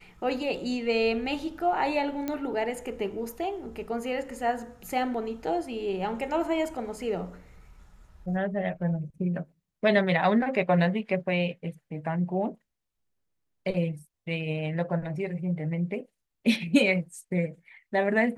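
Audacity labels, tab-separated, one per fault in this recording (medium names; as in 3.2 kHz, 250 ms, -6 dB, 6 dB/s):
2.280000	2.280000	pop -17 dBFS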